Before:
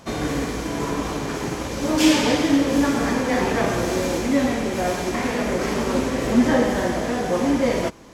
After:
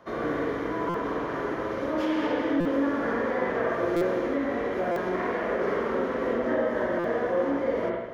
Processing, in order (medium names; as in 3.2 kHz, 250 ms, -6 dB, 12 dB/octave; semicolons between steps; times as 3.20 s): three-band isolator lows -13 dB, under 290 Hz, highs -19 dB, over 2.4 kHz; compression, threshold -23 dBFS, peak gain reduction 8 dB; graphic EQ with 31 bands 250 Hz -4 dB, 800 Hz -8 dB, 2.5 kHz -8 dB, 8 kHz -12 dB; spring tank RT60 1.2 s, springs 43/54/60 ms, chirp 60 ms, DRR -2 dB; buffer glitch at 0.89/2.60/3.96/4.91/6.99 s, samples 256, times 8; trim -2.5 dB